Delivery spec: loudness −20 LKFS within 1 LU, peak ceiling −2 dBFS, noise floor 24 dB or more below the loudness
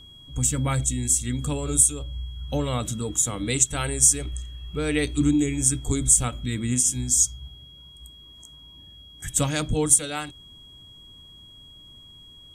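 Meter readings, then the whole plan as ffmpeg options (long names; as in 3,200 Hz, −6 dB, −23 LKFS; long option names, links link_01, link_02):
interfering tone 3,300 Hz; level of the tone −46 dBFS; integrated loudness −22.0 LKFS; sample peak −5.0 dBFS; target loudness −20.0 LKFS
→ -af "bandreject=frequency=3300:width=30"
-af "volume=2dB"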